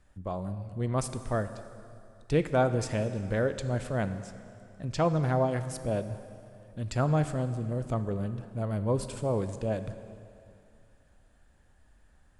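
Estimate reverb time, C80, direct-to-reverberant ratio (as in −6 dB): 2.6 s, 12.0 dB, 10.0 dB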